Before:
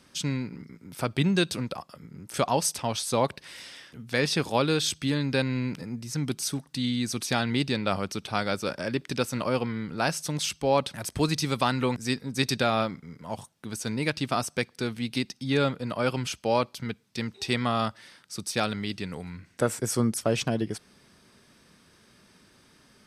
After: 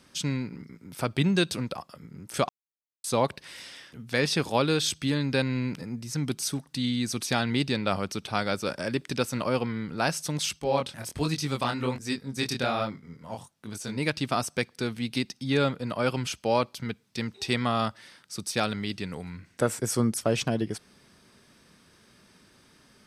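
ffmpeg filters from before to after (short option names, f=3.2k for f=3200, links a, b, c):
-filter_complex "[0:a]asettb=1/sr,asplit=3[a][b][c];[a]atrim=end=8.694[d];[b]atrim=start=8.69:end=9.09,asetpts=PTS-STARTPTS,afade=t=in:d=0.004:c=qsin,afade=t=out:st=0.396:d=0.004:c=qsin,equalizer=f=8.7k:t=o:w=0.77:g=5.5[e];[c]atrim=start=9.086[f];[d][e]acrossfade=d=0.004:c1=hsin:c2=qsin[g];[g][f]acrossfade=d=0.004:c1=qsin:c2=hsin,asettb=1/sr,asplit=3[h][i][j];[h]atrim=end=10.594[k];[i]atrim=start=10.59:end=13.98,asetpts=PTS-STARTPTS,afade=t=in:d=0.004:c=qsin,afade=t=out:st=3.386:d=0.004:c=qsin,flanger=delay=19:depth=7.1:speed=1.3[l];[j]atrim=start=13.976[m];[k][l]acrossfade=d=0.004:c1=hsin:c2=qsin[n];[n][m]acrossfade=d=0.004:c1=qsin:c2=hsin,asplit=3[o][p][q];[o]atrim=end=2.49,asetpts=PTS-STARTPTS,afade=t=out:st=2.486:d=0.004:c=hsin[r];[p]atrim=start=2.49:end=3.04,asetpts=PTS-STARTPTS,volume=0[s];[q]atrim=start=3.04,asetpts=PTS-STARTPTS,afade=t=in:d=0.004:c=hsin[t];[r][s][t]concat=n=3:v=0:a=1"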